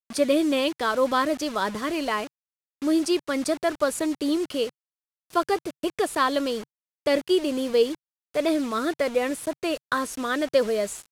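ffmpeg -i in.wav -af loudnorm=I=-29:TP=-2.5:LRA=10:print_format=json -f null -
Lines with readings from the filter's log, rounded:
"input_i" : "-25.5",
"input_tp" : "-9.2",
"input_lra" : "1.7",
"input_thresh" : "-35.6",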